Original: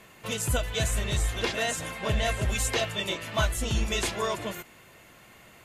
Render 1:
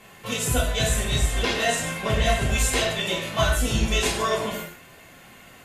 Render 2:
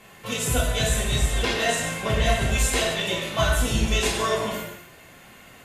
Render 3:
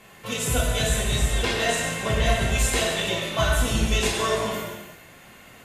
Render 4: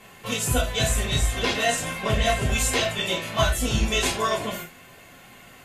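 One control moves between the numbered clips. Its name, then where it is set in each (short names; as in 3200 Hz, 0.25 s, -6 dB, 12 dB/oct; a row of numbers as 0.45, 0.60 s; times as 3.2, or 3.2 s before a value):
non-linear reverb, gate: 0.2, 0.3, 0.46, 0.11 s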